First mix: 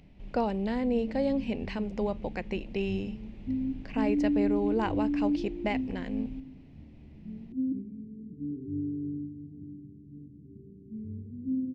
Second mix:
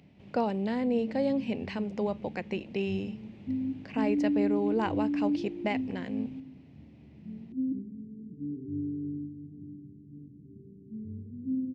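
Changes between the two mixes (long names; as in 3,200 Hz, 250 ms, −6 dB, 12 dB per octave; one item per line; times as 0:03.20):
background: add high-frequency loss of the air 460 metres
master: add high-pass filter 86 Hz 24 dB per octave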